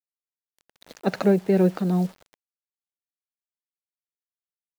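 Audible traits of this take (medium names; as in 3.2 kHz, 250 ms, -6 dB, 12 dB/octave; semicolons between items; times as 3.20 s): a quantiser's noise floor 8-bit, dither none; tremolo triangle 2.6 Hz, depth 45%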